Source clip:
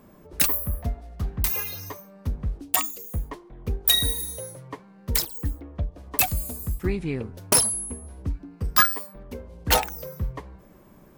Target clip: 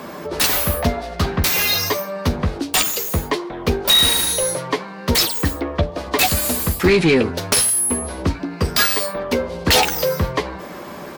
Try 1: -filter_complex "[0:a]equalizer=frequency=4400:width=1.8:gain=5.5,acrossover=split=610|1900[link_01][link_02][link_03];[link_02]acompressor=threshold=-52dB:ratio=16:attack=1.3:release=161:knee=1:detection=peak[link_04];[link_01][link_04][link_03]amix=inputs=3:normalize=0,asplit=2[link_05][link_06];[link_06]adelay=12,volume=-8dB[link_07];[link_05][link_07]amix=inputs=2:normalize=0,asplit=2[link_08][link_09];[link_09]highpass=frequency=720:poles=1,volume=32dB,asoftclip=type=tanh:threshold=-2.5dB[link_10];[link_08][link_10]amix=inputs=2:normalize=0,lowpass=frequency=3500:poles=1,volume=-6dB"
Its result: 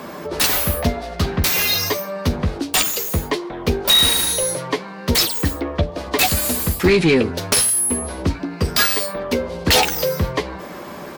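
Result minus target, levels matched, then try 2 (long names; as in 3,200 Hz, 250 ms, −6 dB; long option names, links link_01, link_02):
downward compressor: peak gain reduction +6.5 dB
-filter_complex "[0:a]equalizer=frequency=4400:width=1.8:gain=5.5,acrossover=split=610|1900[link_01][link_02][link_03];[link_02]acompressor=threshold=-45dB:ratio=16:attack=1.3:release=161:knee=1:detection=peak[link_04];[link_01][link_04][link_03]amix=inputs=3:normalize=0,asplit=2[link_05][link_06];[link_06]adelay=12,volume=-8dB[link_07];[link_05][link_07]amix=inputs=2:normalize=0,asplit=2[link_08][link_09];[link_09]highpass=frequency=720:poles=1,volume=32dB,asoftclip=type=tanh:threshold=-2.5dB[link_10];[link_08][link_10]amix=inputs=2:normalize=0,lowpass=frequency=3500:poles=1,volume=-6dB"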